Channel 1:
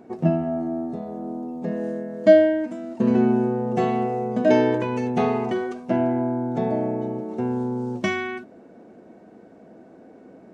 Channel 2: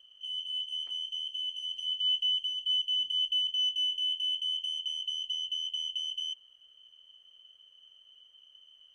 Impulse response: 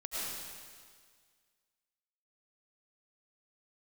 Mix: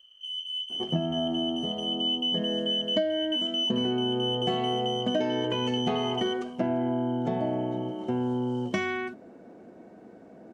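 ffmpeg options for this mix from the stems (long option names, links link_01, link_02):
-filter_complex "[0:a]bandreject=frequency=221.5:width_type=h:width=4,bandreject=frequency=443:width_type=h:width=4,adelay=700,volume=-1.5dB[link_01];[1:a]volume=1.5dB[link_02];[link_01][link_02]amix=inputs=2:normalize=0,acompressor=threshold=-23dB:ratio=16"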